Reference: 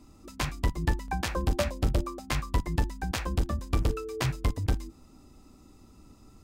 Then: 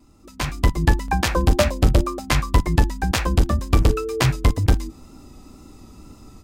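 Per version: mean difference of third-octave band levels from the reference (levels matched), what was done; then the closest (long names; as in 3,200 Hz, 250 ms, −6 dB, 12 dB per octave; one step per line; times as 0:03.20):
1.0 dB: pitch vibrato 2 Hz 28 cents
automatic gain control gain up to 10.5 dB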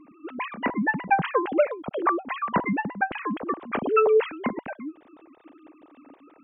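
15.0 dB: three sine waves on the formant tracks
level +3 dB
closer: first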